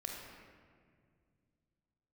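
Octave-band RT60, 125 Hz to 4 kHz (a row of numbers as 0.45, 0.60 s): 3.2, 3.0, 2.3, 1.8, 1.7, 1.2 s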